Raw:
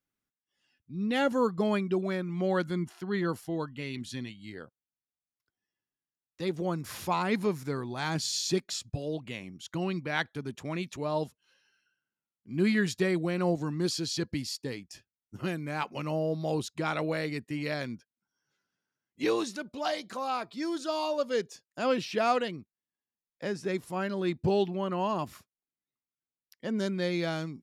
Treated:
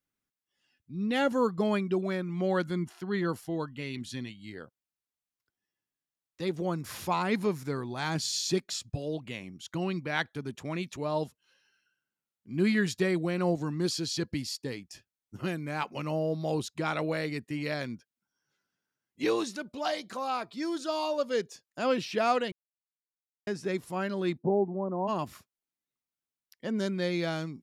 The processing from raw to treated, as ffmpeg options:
-filter_complex "[0:a]asplit=3[a][b][c];[a]afade=t=out:st=24.37:d=0.02[d];[b]asuperpass=centerf=400:order=8:qfactor=0.5,afade=t=in:st=24.37:d=0.02,afade=t=out:st=25.07:d=0.02[e];[c]afade=t=in:st=25.07:d=0.02[f];[d][e][f]amix=inputs=3:normalize=0,asplit=3[g][h][i];[g]atrim=end=22.52,asetpts=PTS-STARTPTS,afade=t=out:st=22.516:d=0.004:c=hsin[j];[h]atrim=start=22.52:end=23.47,asetpts=PTS-STARTPTS,volume=0[k];[i]atrim=start=23.47,asetpts=PTS-STARTPTS,afade=t=in:d=0.004:c=hsin[l];[j][k][l]concat=n=3:v=0:a=1"

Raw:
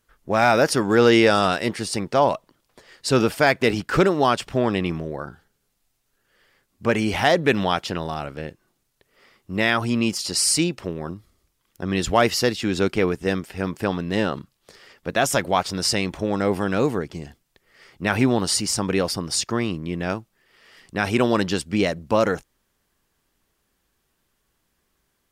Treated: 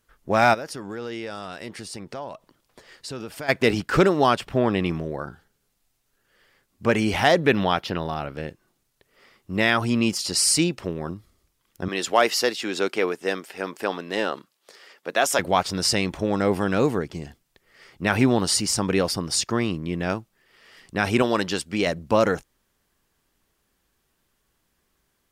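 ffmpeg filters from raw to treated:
-filter_complex "[0:a]asplit=3[a][b][c];[a]afade=t=out:st=0.53:d=0.02[d];[b]acompressor=threshold=-36dB:ratio=3:attack=3.2:release=140:knee=1:detection=peak,afade=t=in:st=0.53:d=0.02,afade=t=out:st=3.48:d=0.02[e];[c]afade=t=in:st=3.48:d=0.02[f];[d][e][f]amix=inputs=3:normalize=0,asettb=1/sr,asplit=3[g][h][i];[g]atrim=end=4.354[j];[h]atrim=start=4.35:end=4.79,asetpts=PTS-STARTPTS,afade=t=in:d=0.004:c=qsin,afade=t=out:st=0.436:d=0.004:c=qsin,equalizer=f=6.7k:t=o:w=1.5:g=-6.5[k];[i]atrim=start=4.786[l];[j][k]acrossfade=d=0.004:c1=hsin:c2=qsin[m];[m][l]acrossfade=d=0.004:c1=qsin:c2=hsin,asettb=1/sr,asplit=3[n][o][p];[n]atrim=end=7.474[q];[o]atrim=start=7.47:end=8.35,asetpts=PTS-STARTPTS,afade=t=in:d=0.004:c=qsin,afade=t=out:st=0.876:d=0.004:c=qsin,equalizer=f=7.7k:t=o:w=0.72:g=-12[r];[p]atrim=start=8.346[s];[q][r]acrossfade=d=0.004:c1=hsin:c2=qsin[t];[t][s]acrossfade=d=0.004:c1=qsin:c2=hsin,asettb=1/sr,asplit=3[u][v][w];[u]atrim=end=11.884[x];[v]atrim=start=11.88:end=15.39,asetpts=PTS-STARTPTS,afade=t=in:d=0.004:c=qsin,afade=t=out:st=3.506:d=0.004:c=qsin,highpass=380[y];[w]atrim=start=15.386[z];[x][y]acrossfade=d=0.004:c1=hsin:c2=qsin[aa];[aa][z]acrossfade=d=0.004:c1=qsin:c2=hsin,asettb=1/sr,asplit=3[ab][ac][ad];[ab]atrim=end=21.224[ae];[ac]atrim=start=21.22:end=21.87,asetpts=PTS-STARTPTS,afade=t=in:d=0.004:c=qsin,afade=t=out:st=0.646:d=0.004:c=qsin,lowshelf=f=280:g=-8[af];[ad]atrim=start=21.866[ag];[ae][af]acrossfade=d=0.004:c1=hsin:c2=qsin[ah];[ah][ag]acrossfade=d=0.004:c1=qsin:c2=hsin"

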